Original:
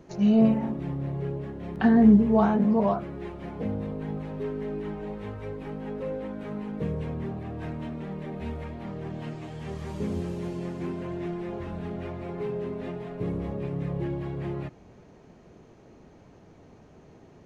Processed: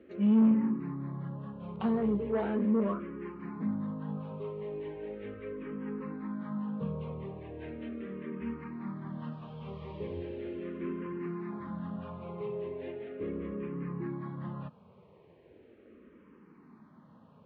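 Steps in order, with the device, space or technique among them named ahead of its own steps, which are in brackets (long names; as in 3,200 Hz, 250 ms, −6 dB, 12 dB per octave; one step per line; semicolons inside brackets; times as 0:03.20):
barber-pole phaser into a guitar amplifier (frequency shifter mixed with the dry sound −0.38 Hz; soft clipping −21.5 dBFS, distortion −13 dB; loudspeaker in its box 99–3,400 Hz, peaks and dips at 120 Hz −7 dB, 220 Hz +6 dB, 510 Hz +3 dB, 720 Hz −9 dB, 1,100 Hz +7 dB)
level −2.5 dB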